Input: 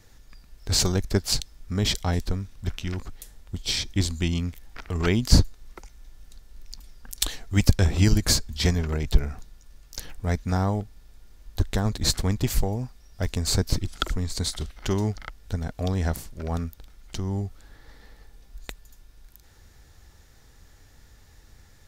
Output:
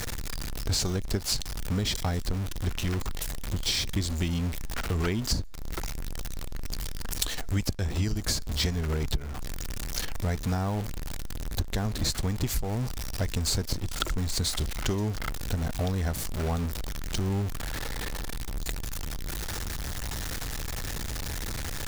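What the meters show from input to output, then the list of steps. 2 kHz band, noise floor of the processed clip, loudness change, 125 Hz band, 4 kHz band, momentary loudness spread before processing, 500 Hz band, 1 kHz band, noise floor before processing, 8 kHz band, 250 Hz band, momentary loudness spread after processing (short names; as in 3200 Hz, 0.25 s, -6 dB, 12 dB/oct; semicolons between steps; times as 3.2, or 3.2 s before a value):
-1.0 dB, -34 dBFS, -5.0 dB, -3.5 dB, -2.5 dB, 18 LU, -3.5 dB, -1.5 dB, -54 dBFS, -2.0 dB, -4.0 dB, 9 LU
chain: zero-crossing step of -27.5 dBFS; compressor 10:1, threshold -24 dBFS, peak gain reduction 16.5 dB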